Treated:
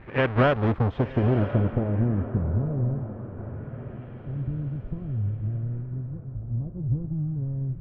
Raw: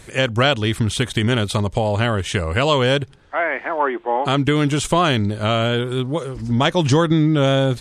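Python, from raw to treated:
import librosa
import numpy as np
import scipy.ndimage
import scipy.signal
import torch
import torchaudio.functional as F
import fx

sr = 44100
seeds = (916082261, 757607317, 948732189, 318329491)

y = fx.halfwave_hold(x, sr)
y = fx.filter_sweep_lowpass(y, sr, from_hz=2200.0, to_hz=100.0, start_s=0.06, end_s=3.13, q=0.97)
y = fx.echo_diffused(y, sr, ms=1031, feedback_pct=53, wet_db=-12.5)
y = fx.filter_lfo_lowpass(y, sr, shape='sine', hz=0.26, low_hz=970.0, high_hz=4800.0, q=1.0)
y = y * librosa.db_to_amplitude(-8.0)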